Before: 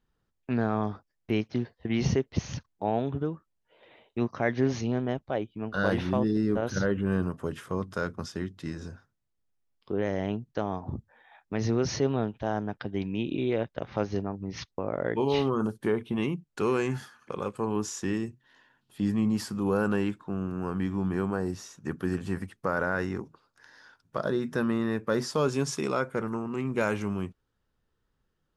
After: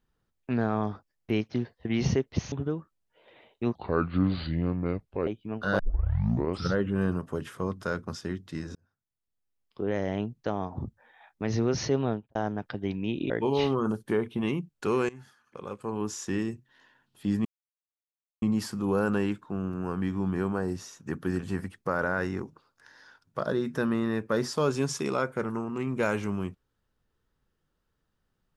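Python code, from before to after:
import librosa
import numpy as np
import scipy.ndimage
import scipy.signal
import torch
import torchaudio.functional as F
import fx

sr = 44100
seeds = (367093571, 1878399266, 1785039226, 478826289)

y = fx.studio_fade_out(x, sr, start_s=12.19, length_s=0.27)
y = fx.edit(y, sr, fx.cut(start_s=2.52, length_s=0.55),
    fx.speed_span(start_s=4.3, length_s=1.08, speed=0.71),
    fx.tape_start(start_s=5.9, length_s=0.96),
    fx.fade_in_span(start_s=8.86, length_s=1.21),
    fx.cut(start_s=13.41, length_s=1.64),
    fx.fade_in_from(start_s=16.84, length_s=1.25, floor_db=-20.0),
    fx.insert_silence(at_s=19.2, length_s=0.97), tone=tone)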